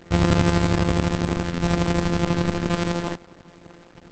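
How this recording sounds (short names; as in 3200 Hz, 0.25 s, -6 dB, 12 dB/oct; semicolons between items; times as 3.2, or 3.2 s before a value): a buzz of ramps at a fixed pitch in blocks of 256 samples; tremolo saw up 12 Hz, depth 60%; a quantiser's noise floor 8-bit, dither none; Opus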